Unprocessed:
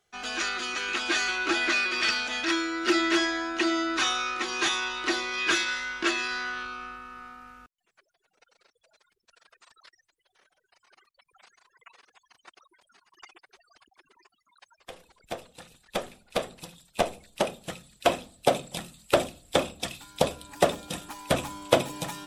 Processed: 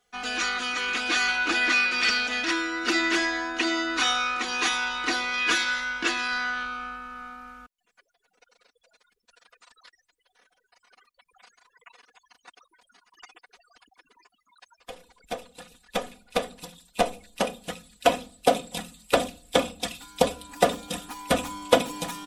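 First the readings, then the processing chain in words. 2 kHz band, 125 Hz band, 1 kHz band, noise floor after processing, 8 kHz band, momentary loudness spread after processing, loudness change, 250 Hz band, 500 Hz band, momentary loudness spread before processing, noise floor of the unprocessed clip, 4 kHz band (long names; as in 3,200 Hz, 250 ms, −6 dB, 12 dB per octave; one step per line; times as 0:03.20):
+3.0 dB, −2.0 dB, +2.5 dB, −77 dBFS, +1.0 dB, 14 LU, +2.0 dB, −0.5 dB, +1.0 dB, 15 LU, −79 dBFS, +1.5 dB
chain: comb filter 4.1 ms, depth 75%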